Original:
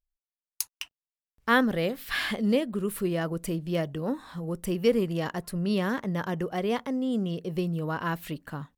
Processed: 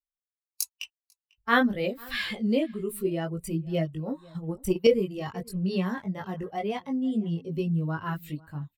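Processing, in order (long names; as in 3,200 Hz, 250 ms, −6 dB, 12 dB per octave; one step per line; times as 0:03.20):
spectral dynamics exaggerated over time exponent 1.5
multi-voice chorus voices 2, 0.27 Hz, delay 20 ms, depth 1.7 ms
0:04.30–0:04.87: transient designer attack +8 dB, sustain −8 dB
slap from a distant wall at 85 metres, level −24 dB
level +5 dB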